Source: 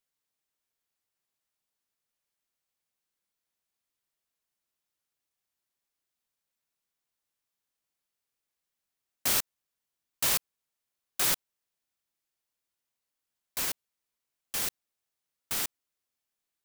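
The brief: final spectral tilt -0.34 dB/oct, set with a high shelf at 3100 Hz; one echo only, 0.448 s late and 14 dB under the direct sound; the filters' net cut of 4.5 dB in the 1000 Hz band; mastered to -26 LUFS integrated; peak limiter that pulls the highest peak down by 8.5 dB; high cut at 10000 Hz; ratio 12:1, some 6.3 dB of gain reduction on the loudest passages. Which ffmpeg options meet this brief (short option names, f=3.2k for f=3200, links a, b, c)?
-af "lowpass=10k,equalizer=f=1k:t=o:g=-6.5,highshelf=f=3.1k:g=4,acompressor=threshold=-29dB:ratio=12,alimiter=level_in=2.5dB:limit=-24dB:level=0:latency=1,volume=-2.5dB,aecho=1:1:448:0.2,volume=13dB"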